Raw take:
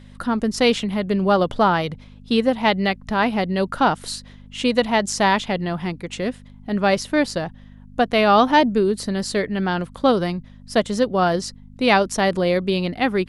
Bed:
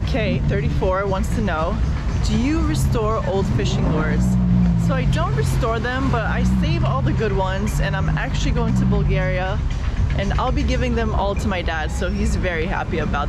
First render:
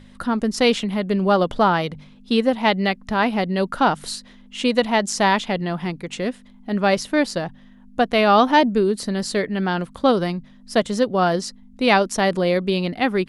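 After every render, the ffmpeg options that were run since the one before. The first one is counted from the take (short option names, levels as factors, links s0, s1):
-af "bandreject=f=50:t=h:w=4,bandreject=f=100:t=h:w=4,bandreject=f=150:t=h:w=4"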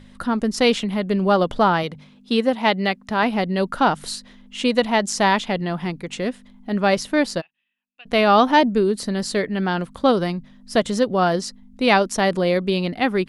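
-filter_complex "[0:a]asettb=1/sr,asplit=3[s0][s1][s2];[s0]atrim=end=1.834[s3];[s1]atrim=start=1.83:end=3.23,asetpts=PTS-STARTPTS,afade=t=in:d=0.004:c=qsin,afade=t=out:st=1.396:d=0.004:c=qsin,highpass=f=140:p=1[s4];[s2]atrim=start=3.226[s5];[s3][s4]acrossfade=d=0.004:c1=hsin:c2=qsin[s6];[s6][s5]acrossfade=d=0.004:c1=qsin:c2=hsin,asplit=3[s7][s8][s9];[s7]afade=t=out:st=7.4:d=0.02[s10];[s8]bandpass=f=2600:t=q:w=17,afade=t=in:st=7.4:d=0.02,afade=t=out:st=8.05:d=0.02[s11];[s9]afade=t=in:st=8.05:d=0.02[s12];[s10][s11][s12]amix=inputs=3:normalize=0,asettb=1/sr,asplit=3[s13][s14][s15];[s13]atrim=end=10.754[s16];[s14]atrim=start=10.75:end=11.23,asetpts=PTS-STARTPTS,afade=t=in:d=0.004:c=qsin,afade=t=out:st=0.476:d=0.004:c=qsin,acompressor=mode=upward:threshold=0.112:ratio=2.5:attack=3.2:release=140:knee=2.83:detection=peak[s17];[s15]atrim=start=11.226[s18];[s16][s17]acrossfade=d=0.004:c1=hsin:c2=qsin[s19];[s19][s18]acrossfade=d=0.004:c1=qsin:c2=hsin"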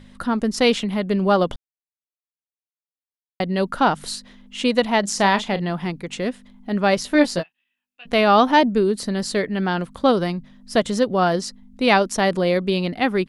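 -filter_complex "[0:a]asplit=3[s0][s1][s2];[s0]afade=t=out:st=5.03:d=0.02[s3];[s1]asplit=2[s4][s5];[s5]adelay=35,volume=0.237[s6];[s4][s6]amix=inputs=2:normalize=0,afade=t=in:st=5.03:d=0.02,afade=t=out:st=5.69:d=0.02[s7];[s2]afade=t=in:st=5.69:d=0.02[s8];[s3][s7][s8]amix=inputs=3:normalize=0,asettb=1/sr,asplit=3[s9][s10][s11];[s9]atrim=end=7.024[s12];[s10]atrim=start=7.02:end=8.14,asetpts=PTS-STARTPTS,afade=t=in:d=0.004:c=qsin,afade=t=out:st=1.116:d=0.004:c=qsin,asplit=2[s13][s14];[s14]adelay=17,volume=0.668[s15];[s13][s15]amix=inputs=2:normalize=0,atrim=end_sample=49392[s16];[s11]atrim=start=8.136[s17];[s12][s16]acrossfade=d=0.004:c1=hsin:c2=qsin[s18];[s18][s17]acrossfade=d=0.004:c1=qsin:c2=hsin,asplit=3[s19][s20][s21];[s19]atrim=end=1.56,asetpts=PTS-STARTPTS,afade=t=out:st=1.556:d=0.004:c=hsin[s22];[s20]atrim=start=1.56:end=3.4,asetpts=PTS-STARTPTS,volume=0[s23];[s21]atrim=start=3.4,asetpts=PTS-STARTPTS,afade=t=in:d=0.004:c=hsin[s24];[s22][s23][s24]concat=n=3:v=0:a=1"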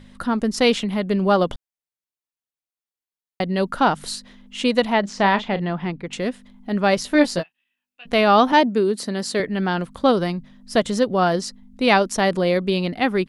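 -filter_complex "[0:a]asettb=1/sr,asplit=3[s0][s1][s2];[s0]atrim=end=4.934[s3];[s1]atrim=start=4.93:end=6.13,asetpts=PTS-STARTPTS,afade=t=in:d=0.004:c=qsin,afade=t=out:st=1.196:d=0.004:c=qsin,lowpass=3300[s4];[s2]atrim=start=6.126[s5];[s3][s4]acrossfade=d=0.004:c1=hsin:c2=qsin[s6];[s6][s5]acrossfade=d=0.004:c1=qsin:c2=hsin,asettb=1/sr,asplit=3[s7][s8][s9];[s7]atrim=end=8.524[s10];[s8]atrim=start=8.52:end=9.4,asetpts=PTS-STARTPTS,afade=t=in:d=0.004:c=qsin,afade=t=out:st=0.876:d=0.004:c=qsin,highpass=190[s11];[s9]atrim=start=9.396[s12];[s10][s11]acrossfade=d=0.004:c1=hsin:c2=qsin[s13];[s13][s12]acrossfade=d=0.004:c1=qsin:c2=hsin"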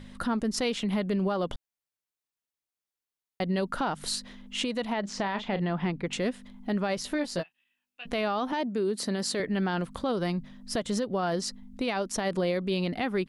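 -af "acompressor=threshold=0.0631:ratio=6,alimiter=limit=0.0944:level=0:latency=1:release=21"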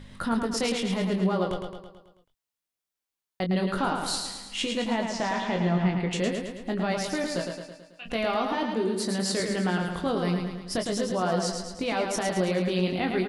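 -filter_complex "[0:a]asplit=2[s0][s1];[s1]adelay=22,volume=0.501[s2];[s0][s2]amix=inputs=2:normalize=0,aecho=1:1:109|218|327|436|545|654|763:0.562|0.309|0.17|0.0936|0.0515|0.0283|0.0156"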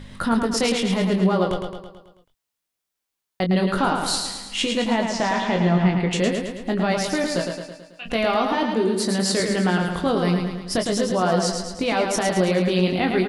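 -af "volume=2"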